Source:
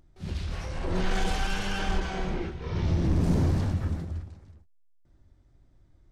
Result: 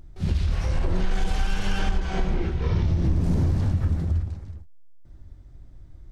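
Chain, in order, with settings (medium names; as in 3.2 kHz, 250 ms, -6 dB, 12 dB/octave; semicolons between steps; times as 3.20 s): bass shelf 130 Hz +9 dB; compression, threshold -26 dBFS, peak gain reduction 12 dB; trim +7 dB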